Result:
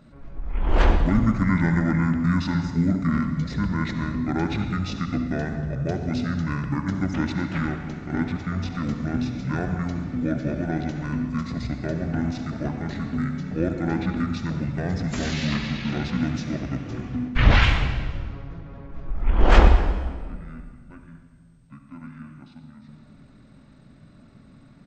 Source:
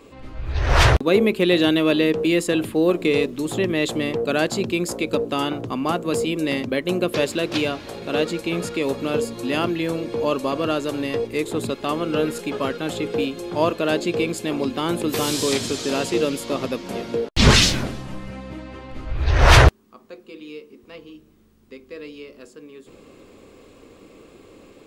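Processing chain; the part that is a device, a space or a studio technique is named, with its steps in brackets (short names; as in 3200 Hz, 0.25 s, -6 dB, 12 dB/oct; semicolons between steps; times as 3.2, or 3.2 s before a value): monster voice (pitch shift -11 st; low shelf 130 Hz +5 dB; reverb RT60 1.7 s, pre-delay 58 ms, DRR 5.5 dB); gain -5.5 dB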